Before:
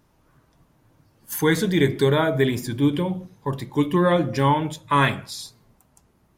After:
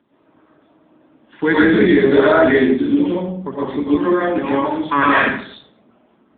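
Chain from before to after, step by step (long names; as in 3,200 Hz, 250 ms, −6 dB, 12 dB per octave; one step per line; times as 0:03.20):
dynamic equaliser 1,600 Hz, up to +8 dB, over −40 dBFS, Q 2.3
0:02.68–0:04.84: downward compressor 12 to 1, threshold −22 dBFS, peak gain reduction 9.5 dB
four-pole ladder high-pass 200 Hz, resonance 40%
convolution reverb RT60 0.55 s, pre-delay 70 ms, DRR −8.5 dB
boost into a limiter +9.5 dB
level −1.5 dB
AMR narrowband 7.95 kbit/s 8,000 Hz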